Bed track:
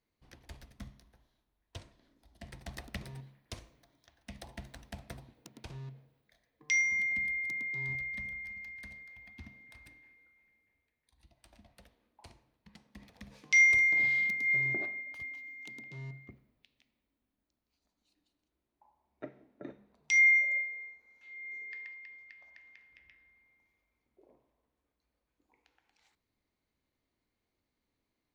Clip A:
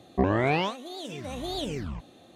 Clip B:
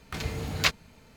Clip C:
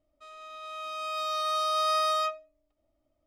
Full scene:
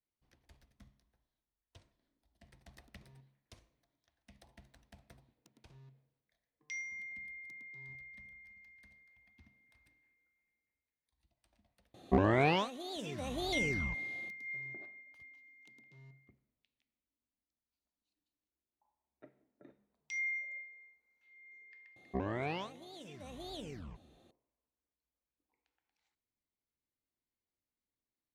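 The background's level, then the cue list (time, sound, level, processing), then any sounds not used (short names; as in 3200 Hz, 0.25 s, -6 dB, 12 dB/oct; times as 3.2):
bed track -14 dB
11.94 add A -4 dB + hard clip -12.5 dBFS
21.96 add A -13 dB + analogue delay 0.216 s, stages 1024, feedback 37%, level -19 dB
not used: B, C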